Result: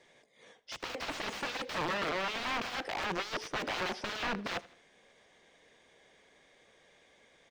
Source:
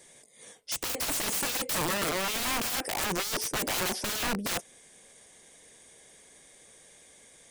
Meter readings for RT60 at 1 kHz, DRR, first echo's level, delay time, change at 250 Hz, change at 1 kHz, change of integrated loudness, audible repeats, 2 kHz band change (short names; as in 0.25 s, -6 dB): none, none, -20.5 dB, 79 ms, -5.5 dB, -2.0 dB, -6.5 dB, 3, -2.5 dB